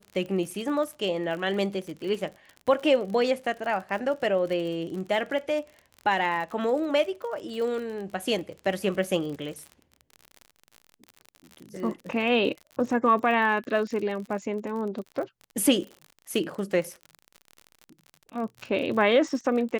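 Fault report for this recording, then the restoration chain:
crackle 49 per s -34 dBFS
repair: de-click

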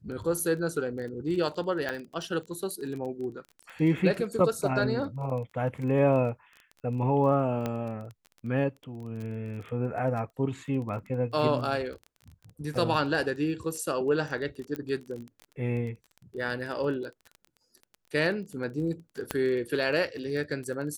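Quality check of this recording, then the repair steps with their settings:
crackle 20 per s -36 dBFS
1.89 s: dropout 2.8 ms
7.66 s: pop -17 dBFS
14.76 s: pop -20 dBFS
19.31 s: pop -13 dBFS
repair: de-click; interpolate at 1.89 s, 2.8 ms

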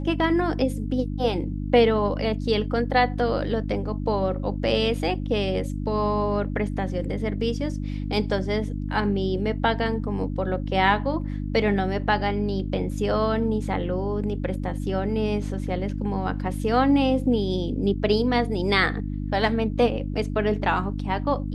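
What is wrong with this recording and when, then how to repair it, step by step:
hum 50 Hz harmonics 6 -29 dBFS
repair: de-hum 50 Hz, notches 6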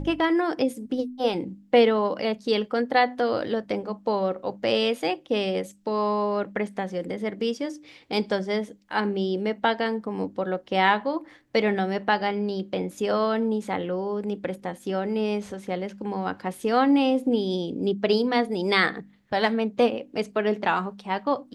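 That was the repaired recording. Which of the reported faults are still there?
nothing left

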